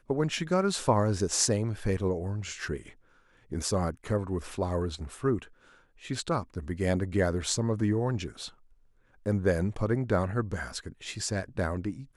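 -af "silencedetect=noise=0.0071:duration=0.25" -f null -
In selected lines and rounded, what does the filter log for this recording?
silence_start: 2.91
silence_end: 3.52 | silence_duration: 0.60
silence_start: 5.47
silence_end: 6.03 | silence_duration: 0.55
silence_start: 8.49
silence_end: 9.26 | silence_duration: 0.76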